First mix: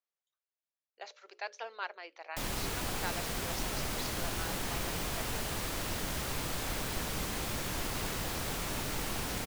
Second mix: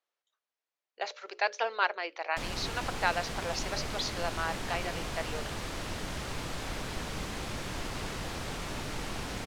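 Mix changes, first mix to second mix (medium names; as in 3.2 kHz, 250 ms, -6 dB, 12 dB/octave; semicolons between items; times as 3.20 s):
speech +11.5 dB; master: add distance through air 53 m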